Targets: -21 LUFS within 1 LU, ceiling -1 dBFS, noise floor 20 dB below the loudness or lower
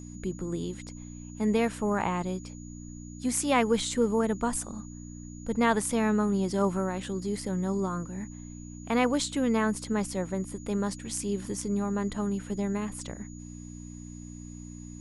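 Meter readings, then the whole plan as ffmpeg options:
hum 60 Hz; harmonics up to 300 Hz; hum level -40 dBFS; steady tone 6800 Hz; tone level -51 dBFS; loudness -29.5 LUFS; peak -10.5 dBFS; loudness target -21.0 LUFS
-> -af "bandreject=f=60:t=h:w=4,bandreject=f=120:t=h:w=4,bandreject=f=180:t=h:w=4,bandreject=f=240:t=h:w=4,bandreject=f=300:t=h:w=4"
-af "bandreject=f=6.8k:w=30"
-af "volume=8.5dB"

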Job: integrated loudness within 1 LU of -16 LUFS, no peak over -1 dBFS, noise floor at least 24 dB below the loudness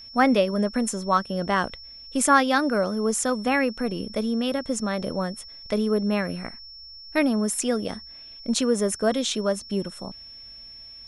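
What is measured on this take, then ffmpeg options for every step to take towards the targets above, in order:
steady tone 5400 Hz; tone level -41 dBFS; loudness -24.5 LUFS; peak -5.0 dBFS; loudness target -16.0 LUFS
-> -af "bandreject=f=5.4k:w=30"
-af "volume=8.5dB,alimiter=limit=-1dB:level=0:latency=1"

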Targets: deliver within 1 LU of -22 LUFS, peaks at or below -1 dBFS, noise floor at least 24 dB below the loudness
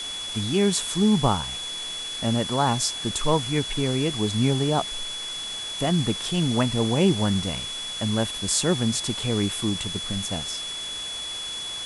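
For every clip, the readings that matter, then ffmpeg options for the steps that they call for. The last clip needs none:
steady tone 3400 Hz; tone level -31 dBFS; noise floor -33 dBFS; noise floor target -49 dBFS; loudness -24.5 LUFS; peak -7.0 dBFS; loudness target -22.0 LUFS
-> -af "bandreject=f=3.4k:w=30"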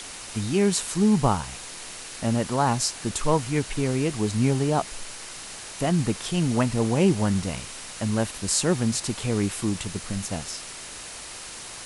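steady tone none; noise floor -39 dBFS; noise floor target -49 dBFS
-> -af "afftdn=nr=10:nf=-39"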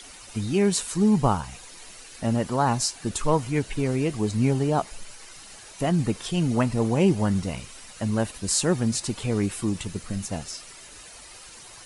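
noise floor -46 dBFS; noise floor target -49 dBFS
-> -af "afftdn=nr=6:nf=-46"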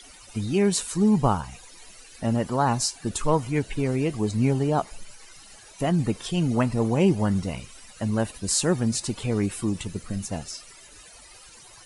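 noise floor -49 dBFS; loudness -25.0 LUFS; peak -7.0 dBFS; loudness target -22.0 LUFS
-> -af "volume=3dB"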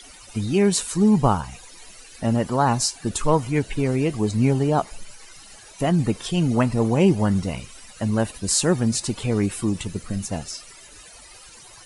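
loudness -22.0 LUFS; peak -4.0 dBFS; noise floor -46 dBFS

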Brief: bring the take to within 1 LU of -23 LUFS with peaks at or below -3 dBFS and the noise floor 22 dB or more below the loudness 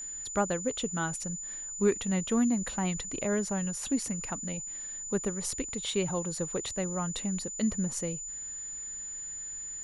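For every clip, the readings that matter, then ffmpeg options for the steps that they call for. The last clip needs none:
steady tone 7000 Hz; tone level -37 dBFS; loudness -32.0 LUFS; peak -13.5 dBFS; loudness target -23.0 LUFS
-> -af "bandreject=f=7k:w=30"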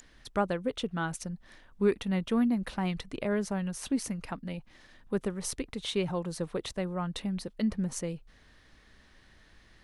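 steady tone none; loudness -33.0 LUFS; peak -14.0 dBFS; loudness target -23.0 LUFS
-> -af "volume=10dB"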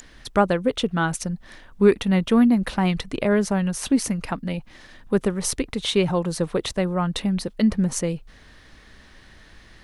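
loudness -23.0 LUFS; peak -4.0 dBFS; noise floor -50 dBFS

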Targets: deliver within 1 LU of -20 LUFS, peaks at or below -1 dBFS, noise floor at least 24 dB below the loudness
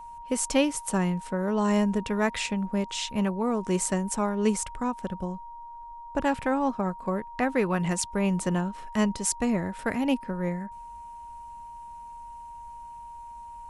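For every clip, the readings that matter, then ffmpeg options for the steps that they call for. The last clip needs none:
steady tone 940 Hz; tone level -40 dBFS; loudness -27.5 LUFS; peak -10.0 dBFS; loudness target -20.0 LUFS
-> -af "bandreject=f=940:w=30"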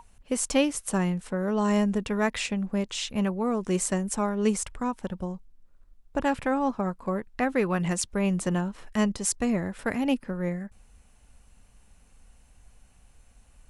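steady tone none; loudness -28.0 LUFS; peak -10.0 dBFS; loudness target -20.0 LUFS
-> -af "volume=8dB"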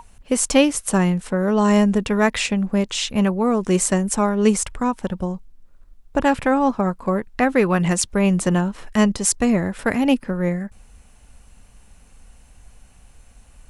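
loudness -20.0 LUFS; peak -2.0 dBFS; noise floor -51 dBFS

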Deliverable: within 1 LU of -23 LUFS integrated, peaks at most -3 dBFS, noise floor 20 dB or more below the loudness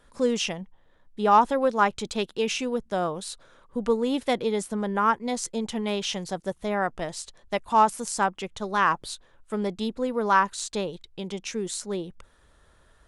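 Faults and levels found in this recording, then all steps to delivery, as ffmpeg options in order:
loudness -26.5 LUFS; peak -7.5 dBFS; loudness target -23.0 LUFS
-> -af "volume=3.5dB"

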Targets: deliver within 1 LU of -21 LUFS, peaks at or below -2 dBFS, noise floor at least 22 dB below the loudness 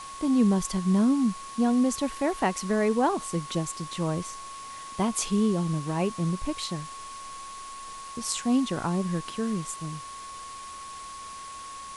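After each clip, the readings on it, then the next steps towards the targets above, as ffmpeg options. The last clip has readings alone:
steady tone 1100 Hz; tone level -39 dBFS; noise floor -41 dBFS; noise floor target -49 dBFS; loudness -27.0 LUFS; peak -9.5 dBFS; loudness target -21.0 LUFS
-> -af "bandreject=f=1.1k:w=30"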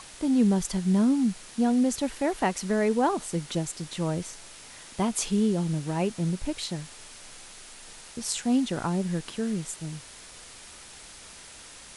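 steady tone none; noise floor -47 dBFS; noise floor target -50 dBFS
-> -af "afftdn=nr=6:nf=-47"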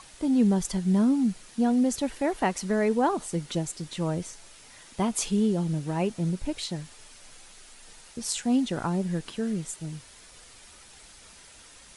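noise floor -51 dBFS; loudness -27.5 LUFS; peak -10.0 dBFS; loudness target -21.0 LUFS
-> -af "volume=6.5dB"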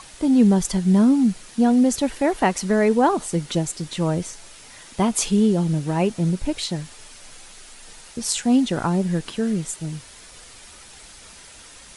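loudness -21.0 LUFS; peak -3.5 dBFS; noise floor -45 dBFS

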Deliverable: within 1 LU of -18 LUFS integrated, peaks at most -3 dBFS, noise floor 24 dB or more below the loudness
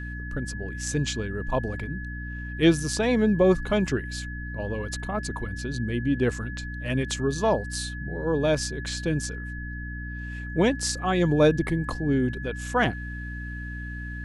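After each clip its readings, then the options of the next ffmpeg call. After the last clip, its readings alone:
hum 60 Hz; harmonics up to 300 Hz; hum level -33 dBFS; steady tone 1700 Hz; tone level -38 dBFS; loudness -27.0 LUFS; peak -8.5 dBFS; loudness target -18.0 LUFS
-> -af "bandreject=f=60:t=h:w=6,bandreject=f=120:t=h:w=6,bandreject=f=180:t=h:w=6,bandreject=f=240:t=h:w=6,bandreject=f=300:t=h:w=6"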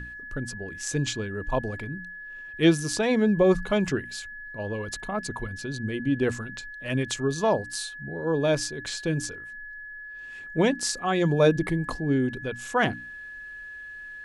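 hum none; steady tone 1700 Hz; tone level -38 dBFS
-> -af "bandreject=f=1.7k:w=30"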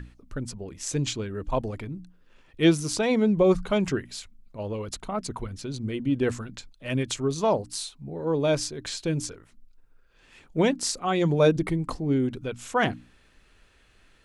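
steady tone none; loudness -27.0 LUFS; peak -8.5 dBFS; loudness target -18.0 LUFS
-> -af "volume=9dB,alimiter=limit=-3dB:level=0:latency=1"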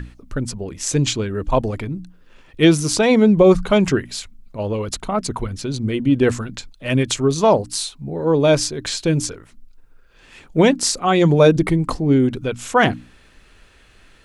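loudness -18.5 LUFS; peak -3.0 dBFS; noise floor -50 dBFS

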